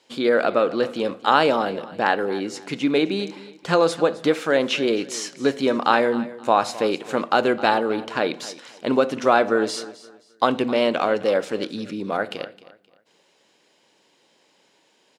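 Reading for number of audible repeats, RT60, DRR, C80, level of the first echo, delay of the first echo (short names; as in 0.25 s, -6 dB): 2, none, none, none, -17.5 dB, 0.262 s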